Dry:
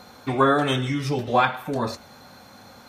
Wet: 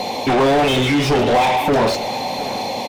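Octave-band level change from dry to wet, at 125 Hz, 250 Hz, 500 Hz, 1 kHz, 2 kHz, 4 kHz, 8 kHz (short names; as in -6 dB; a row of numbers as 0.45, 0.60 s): +4.5, +7.5, +9.0, +7.0, +6.0, +10.5, +12.0 dB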